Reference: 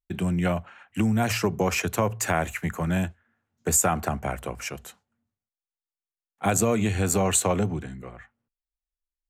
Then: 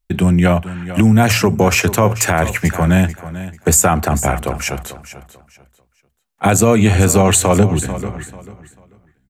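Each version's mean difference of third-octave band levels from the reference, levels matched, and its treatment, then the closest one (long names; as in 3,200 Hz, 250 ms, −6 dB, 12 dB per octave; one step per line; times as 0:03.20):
3.0 dB: low-shelf EQ 61 Hz +8.5 dB
on a send: repeating echo 441 ms, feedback 26%, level −14.5 dB
on the sum: boost into a limiter +12.5 dB
level −1 dB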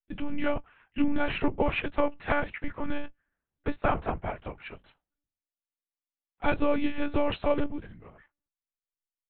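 9.0 dB: double-tracking delay 24 ms −14 dB
one-pitch LPC vocoder at 8 kHz 290 Hz
expander for the loud parts 1.5 to 1, over −41 dBFS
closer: first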